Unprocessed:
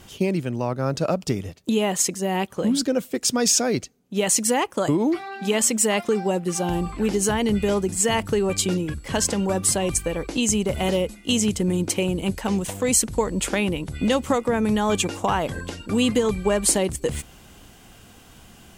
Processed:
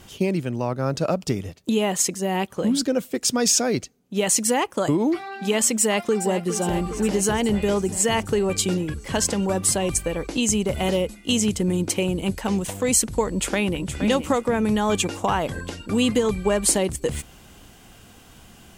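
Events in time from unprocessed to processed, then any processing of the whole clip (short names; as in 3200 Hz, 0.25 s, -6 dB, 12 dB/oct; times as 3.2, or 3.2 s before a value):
5.79–6.6 echo throw 0.41 s, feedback 70%, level -10.5 dB
13.27–13.81 echo throw 0.47 s, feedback 20%, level -9 dB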